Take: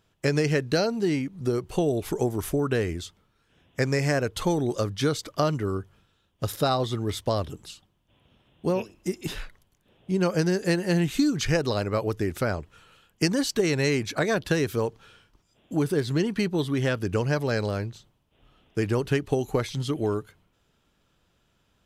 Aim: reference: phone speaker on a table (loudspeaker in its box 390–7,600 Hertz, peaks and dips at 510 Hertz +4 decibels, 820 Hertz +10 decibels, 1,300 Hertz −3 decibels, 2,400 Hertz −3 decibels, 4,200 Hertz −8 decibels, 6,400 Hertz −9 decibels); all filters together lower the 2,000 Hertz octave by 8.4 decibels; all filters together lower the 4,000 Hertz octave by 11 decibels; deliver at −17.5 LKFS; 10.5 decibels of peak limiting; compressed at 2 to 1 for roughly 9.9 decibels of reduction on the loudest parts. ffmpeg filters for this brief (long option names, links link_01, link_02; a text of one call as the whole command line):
ffmpeg -i in.wav -af "equalizer=frequency=2000:width_type=o:gain=-8,equalizer=frequency=4000:width_type=o:gain=-6,acompressor=threshold=-38dB:ratio=2,alimiter=level_in=5.5dB:limit=-24dB:level=0:latency=1,volume=-5.5dB,highpass=frequency=390:width=0.5412,highpass=frequency=390:width=1.3066,equalizer=frequency=510:width_type=q:width=4:gain=4,equalizer=frequency=820:width_type=q:width=4:gain=10,equalizer=frequency=1300:width_type=q:width=4:gain=-3,equalizer=frequency=2400:width_type=q:width=4:gain=-3,equalizer=frequency=4200:width_type=q:width=4:gain=-8,equalizer=frequency=6400:width_type=q:width=4:gain=-9,lowpass=frequency=7600:width=0.5412,lowpass=frequency=7600:width=1.3066,volume=24dB" out.wav